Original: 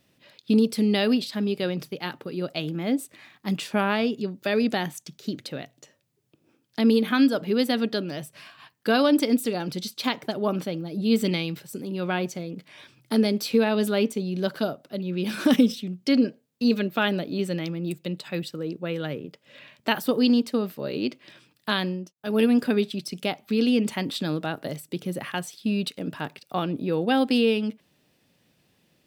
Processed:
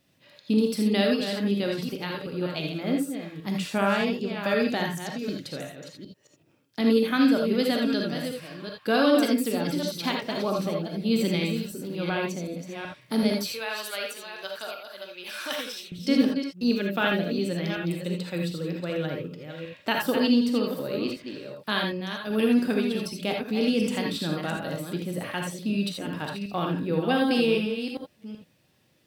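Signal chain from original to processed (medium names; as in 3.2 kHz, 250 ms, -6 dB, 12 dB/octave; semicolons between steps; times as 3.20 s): chunks repeated in reverse 378 ms, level -8 dB; 13.53–15.92 s: high-pass 990 Hz 12 dB/octave; gated-style reverb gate 100 ms rising, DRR 1 dB; trim -3 dB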